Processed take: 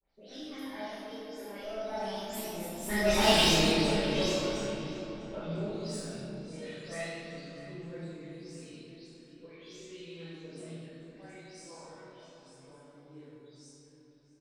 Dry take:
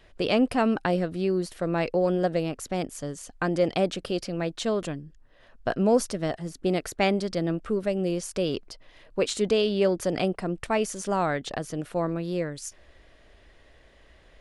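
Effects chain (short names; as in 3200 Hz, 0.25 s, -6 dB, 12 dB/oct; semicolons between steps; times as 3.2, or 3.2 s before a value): spectral delay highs late, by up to 0.188 s; Doppler pass-by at 3.34, 56 m/s, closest 6.7 m; tilt +3 dB/oct; in parallel at -6.5 dB: Schmitt trigger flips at -28.5 dBFS; on the sum: phaser 0.38 Hz, delay 2.2 ms, feedback 58%; tube stage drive 36 dB, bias 0.6; rotary speaker horn 0.85 Hz; doubler 30 ms -5 dB; darkening echo 0.649 s, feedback 38%, low-pass 3800 Hz, level -13 dB; reverb RT60 3.1 s, pre-delay 3 ms, DRR -15 dB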